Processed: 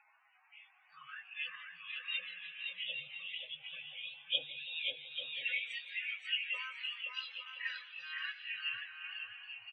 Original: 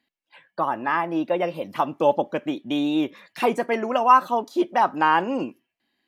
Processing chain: G.711 law mismatch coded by A; inverse Chebyshev band-stop 350–760 Hz, stop band 80 dB; de-hum 369.5 Hz, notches 2; LFO band-pass saw up 2.2 Hz 560–3300 Hz; band noise 650–2800 Hz -76 dBFS; spectral gate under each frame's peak -30 dB strong; on a send at -10.5 dB: reverb RT60 0.50 s, pre-delay 3 ms; on the sum: loudest bins only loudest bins 32; bouncing-ball echo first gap 0.33 s, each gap 0.6×, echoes 5; plain phase-vocoder stretch 1.6×; warbling echo 0.166 s, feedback 66%, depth 127 cents, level -18.5 dB; gain +11.5 dB

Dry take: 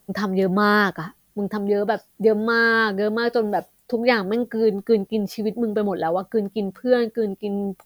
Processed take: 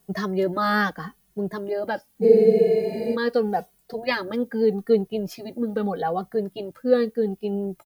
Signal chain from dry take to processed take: spectral freeze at 2.25, 0.90 s; endless flanger 2.3 ms -0.81 Hz

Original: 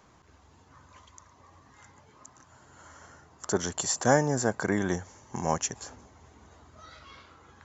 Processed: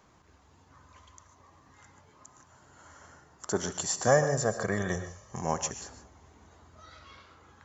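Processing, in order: 4.07–5.42 comb 1.7 ms, depth 66%; non-linear reverb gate 0.17 s rising, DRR 9.5 dB; gain -2.5 dB

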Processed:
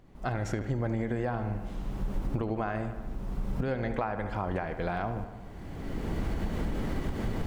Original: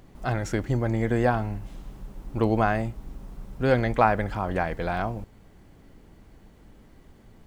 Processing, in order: recorder AGC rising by 22 dB/s; on a send: darkening echo 75 ms, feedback 68%, low-pass 4400 Hz, level -12 dB; on the sum: compressor, threshold -20 dBFS, peak gain reduction 7 dB; high shelf 5100 Hz -7.5 dB; gain -6.5 dB

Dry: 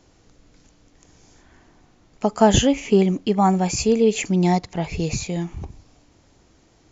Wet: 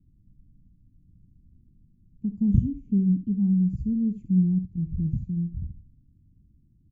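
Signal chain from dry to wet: inverse Chebyshev low-pass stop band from 540 Hz, stop band 50 dB; early reflections 49 ms -15.5 dB, 70 ms -12.5 dB

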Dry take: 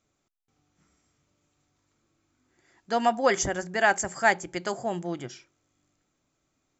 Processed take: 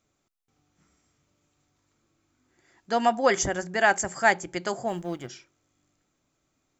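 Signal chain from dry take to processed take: 4.88–5.28 G.711 law mismatch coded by A; gain +1 dB

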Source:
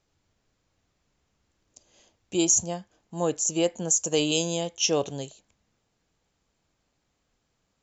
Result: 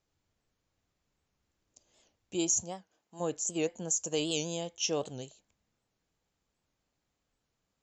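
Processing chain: 2.62–3.19 HPF 150 Hz -> 570 Hz 6 dB/oct; record warp 78 rpm, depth 160 cents; gain -7.5 dB

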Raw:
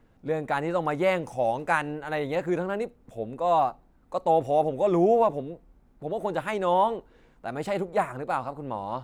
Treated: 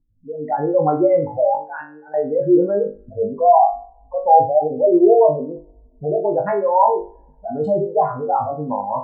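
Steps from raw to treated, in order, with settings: spectral contrast raised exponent 3.6; AGC gain up to 14 dB; 1.55–2.14 pre-emphasis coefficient 0.9; on a send: flutter echo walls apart 3.4 m, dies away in 0.34 s; on the sum: two-slope reverb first 0.71 s, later 2.2 s, from -23 dB, DRR 19 dB; gain -4.5 dB

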